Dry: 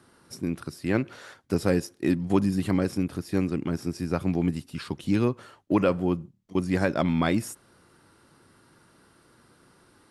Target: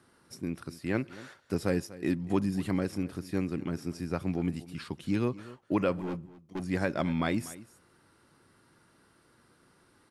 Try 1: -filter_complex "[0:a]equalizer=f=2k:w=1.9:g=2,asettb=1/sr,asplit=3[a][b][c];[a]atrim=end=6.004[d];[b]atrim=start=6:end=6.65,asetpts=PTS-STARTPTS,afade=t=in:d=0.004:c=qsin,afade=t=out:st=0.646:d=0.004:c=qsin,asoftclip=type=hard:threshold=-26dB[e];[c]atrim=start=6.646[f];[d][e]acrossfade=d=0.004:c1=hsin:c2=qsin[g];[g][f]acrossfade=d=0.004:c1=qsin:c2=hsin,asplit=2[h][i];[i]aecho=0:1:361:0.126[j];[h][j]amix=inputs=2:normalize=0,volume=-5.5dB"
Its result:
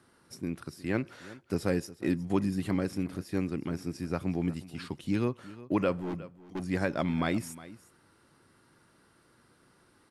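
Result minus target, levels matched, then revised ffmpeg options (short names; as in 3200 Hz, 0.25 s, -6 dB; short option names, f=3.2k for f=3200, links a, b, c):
echo 0.119 s late
-filter_complex "[0:a]equalizer=f=2k:w=1.9:g=2,asettb=1/sr,asplit=3[a][b][c];[a]atrim=end=6.004[d];[b]atrim=start=6:end=6.65,asetpts=PTS-STARTPTS,afade=t=in:d=0.004:c=qsin,afade=t=out:st=0.646:d=0.004:c=qsin,asoftclip=type=hard:threshold=-26dB[e];[c]atrim=start=6.646[f];[d][e]acrossfade=d=0.004:c1=hsin:c2=qsin[g];[g][f]acrossfade=d=0.004:c1=qsin:c2=hsin,asplit=2[h][i];[i]aecho=0:1:242:0.126[j];[h][j]amix=inputs=2:normalize=0,volume=-5.5dB"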